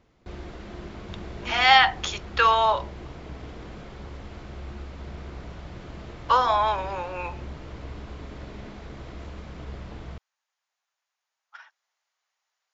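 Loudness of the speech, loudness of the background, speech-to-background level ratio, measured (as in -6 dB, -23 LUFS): -21.5 LUFS, -40.5 LUFS, 19.0 dB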